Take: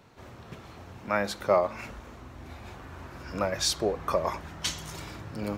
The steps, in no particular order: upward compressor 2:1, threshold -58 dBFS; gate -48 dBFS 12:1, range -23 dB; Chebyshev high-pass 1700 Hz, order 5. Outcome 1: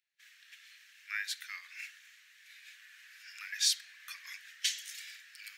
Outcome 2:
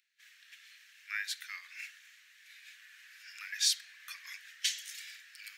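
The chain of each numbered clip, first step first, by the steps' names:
upward compressor > gate > Chebyshev high-pass; gate > upward compressor > Chebyshev high-pass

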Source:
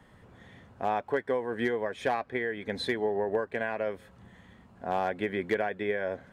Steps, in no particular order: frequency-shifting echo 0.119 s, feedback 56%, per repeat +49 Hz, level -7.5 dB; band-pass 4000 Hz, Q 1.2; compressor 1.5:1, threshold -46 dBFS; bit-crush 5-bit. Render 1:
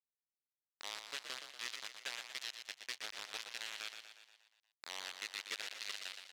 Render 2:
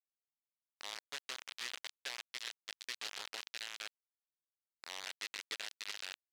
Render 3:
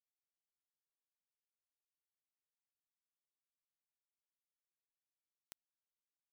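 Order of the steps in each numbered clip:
compressor > bit-crush > frequency-shifting echo > band-pass; compressor > frequency-shifting echo > bit-crush > band-pass; frequency-shifting echo > band-pass > compressor > bit-crush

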